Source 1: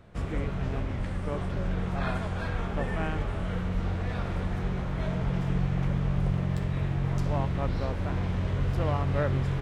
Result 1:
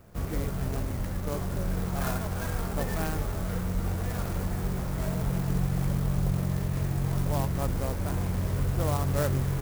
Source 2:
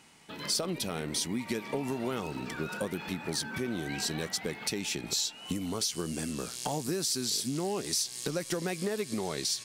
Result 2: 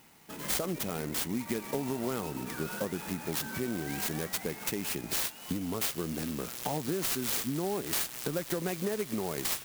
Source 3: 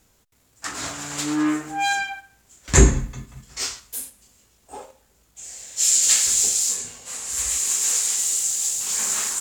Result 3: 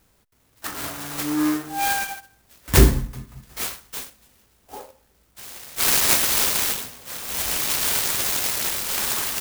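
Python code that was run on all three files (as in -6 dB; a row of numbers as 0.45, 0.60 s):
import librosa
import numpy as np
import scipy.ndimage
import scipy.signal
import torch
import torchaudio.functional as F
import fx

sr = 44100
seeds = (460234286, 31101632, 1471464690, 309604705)

y = fx.clock_jitter(x, sr, seeds[0], jitter_ms=0.071)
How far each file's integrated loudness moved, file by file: 0.0, -0.5, -0.5 LU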